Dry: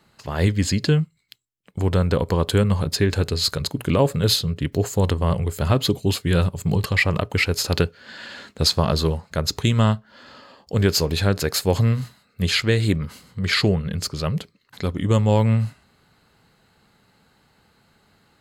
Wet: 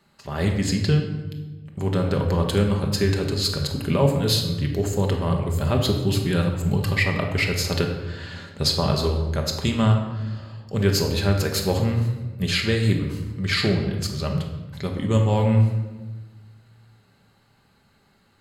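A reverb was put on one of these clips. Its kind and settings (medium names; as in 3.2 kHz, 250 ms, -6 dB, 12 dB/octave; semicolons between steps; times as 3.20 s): simulated room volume 820 m³, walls mixed, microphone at 1.2 m; trim -4 dB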